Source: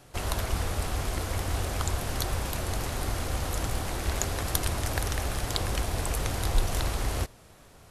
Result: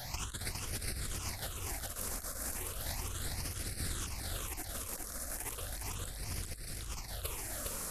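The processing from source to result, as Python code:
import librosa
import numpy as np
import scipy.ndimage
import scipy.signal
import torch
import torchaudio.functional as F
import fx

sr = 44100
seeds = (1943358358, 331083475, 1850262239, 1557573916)

y = fx.high_shelf(x, sr, hz=3300.0, db=12.0)
y = fx.over_compress(y, sr, threshold_db=-35.0, ratio=-0.5)
y = fx.phaser_stages(y, sr, stages=8, low_hz=100.0, high_hz=1100.0, hz=0.35, feedback_pct=20)
y = y + 10.0 ** (-3.5 / 20.0) * np.pad(y, (int(409 * sr / 1000.0), 0))[:len(y)]
y = F.gain(torch.from_numpy(y), -1.5).numpy()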